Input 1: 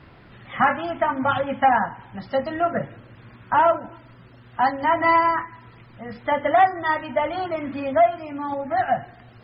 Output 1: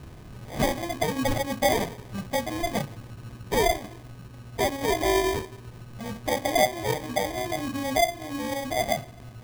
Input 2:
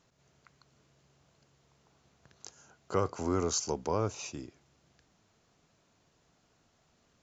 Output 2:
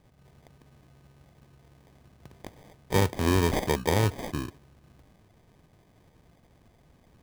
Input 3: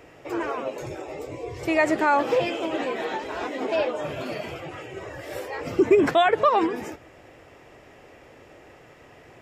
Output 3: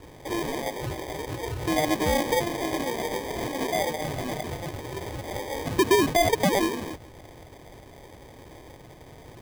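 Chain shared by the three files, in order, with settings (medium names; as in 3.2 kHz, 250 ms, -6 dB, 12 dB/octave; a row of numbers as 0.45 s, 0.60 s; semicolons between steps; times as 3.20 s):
bass shelf 150 Hz +11 dB; in parallel at +0.5 dB: compression, threshold -30 dBFS; on the sum: sample-and-hold 32×; normalise loudness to -27 LUFS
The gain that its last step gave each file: -7.0 dB, +0.5 dB, -5.5 dB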